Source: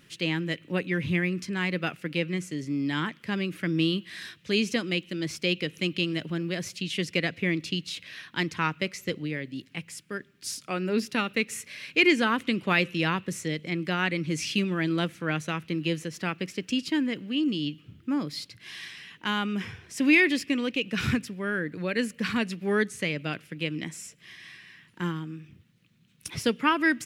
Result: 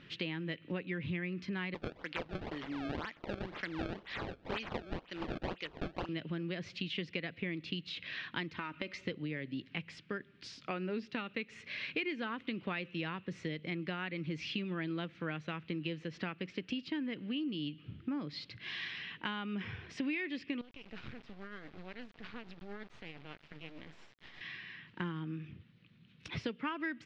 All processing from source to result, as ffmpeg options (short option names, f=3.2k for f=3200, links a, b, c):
-filter_complex "[0:a]asettb=1/sr,asplit=3[a][b][c];[a]atrim=end=1.744[d];[b]atrim=start=1.74:end=6.09,asetpts=PTS-STARTPTS,afade=t=in:d=0.004:c=qsin,afade=t=out:st=4.346:d=0.004:c=qsin,highpass=f=1k:p=1,highshelf=f=7.6k:g=11,acrusher=samples=26:mix=1:aa=0.000001:lfo=1:lforange=41.6:lforate=2[e];[c]atrim=start=6.086[f];[d][e]acrossfade=d=0.004:c1=hsin:c2=qsin[g];[g][f]acrossfade=d=0.004:c1=qsin:c2=hsin,asettb=1/sr,asplit=3[h][i][j];[h]atrim=end=8.554[k];[i]atrim=start=8.55:end=9.04,asetpts=PTS-STARTPTS,afade=t=in:d=0.004:c=qsin,afade=t=out:st=0.486:d=0.004:c=qsin,aecho=1:1:3.3:0.49,atrim=end_sample=21609,acompressor=threshold=-29dB:ratio=6:attack=3.2:release=140:knee=1:detection=peak[l];[j]atrim=start=9.036[m];[k][l]acrossfade=d=0.004:c1=hsin:c2=qsin[n];[n][m]acrossfade=d=0.004:c1=qsin:c2=hsin,asettb=1/sr,asplit=3[o][p][q];[o]atrim=end=20.614[r];[p]atrim=start=20.61:end=24.41,asetpts=PTS-STARTPTS,afade=t=in:d=0.004:c=qsin,afade=t=out:st=3.796:d=0.004:c=qsin,acompressor=threshold=-46dB:ratio=3:attack=3.2:release=140:knee=1:detection=peak,acrusher=bits=6:dc=4:mix=0:aa=0.000001,tremolo=f=8.5:d=0.43[s];[q]atrim=start=24.406[t];[r][s]acrossfade=d=0.004:c1=hsin:c2=qsin[u];[u][t]acrossfade=d=0.004:c1=qsin:c2=hsin,acompressor=threshold=-37dB:ratio=6,lowpass=f=4k:w=0.5412,lowpass=f=4k:w=1.3066,volume=1.5dB"